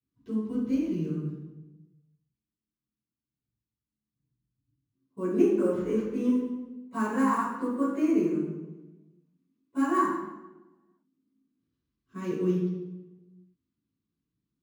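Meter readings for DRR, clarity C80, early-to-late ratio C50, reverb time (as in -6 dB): -16.0 dB, 3.0 dB, 0.0 dB, 1.1 s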